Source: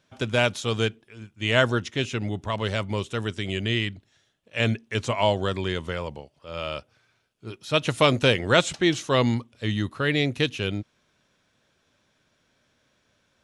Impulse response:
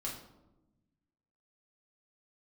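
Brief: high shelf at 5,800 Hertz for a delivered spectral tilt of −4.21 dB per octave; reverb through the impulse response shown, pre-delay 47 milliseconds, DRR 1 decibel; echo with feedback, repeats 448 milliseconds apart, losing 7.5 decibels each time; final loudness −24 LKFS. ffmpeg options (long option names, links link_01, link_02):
-filter_complex "[0:a]highshelf=frequency=5800:gain=4,aecho=1:1:448|896|1344|1792|2240:0.422|0.177|0.0744|0.0312|0.0131,asplit=2[link_01][link_02];[1:a]atrim=start_sample=2205,adelay=47[link_03];[link_02][link_03]afir=irnorm=-1:irlink=0,volume=-1.5dB[link_04];[link_01][link_04]amix=inputs=2:normalize=0,volume=-2.5dB"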